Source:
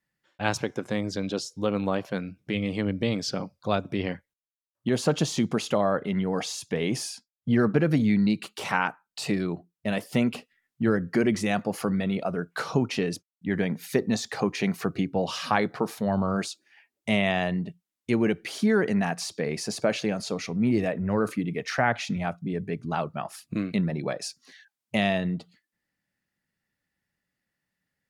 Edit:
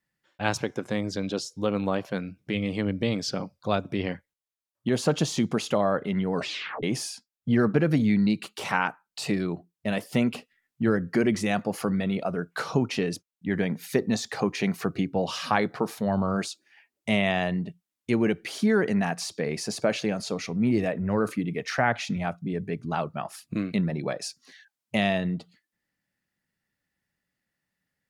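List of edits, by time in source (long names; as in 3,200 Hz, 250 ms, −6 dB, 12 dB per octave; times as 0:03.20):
0:06.35: tape stop 0.48 s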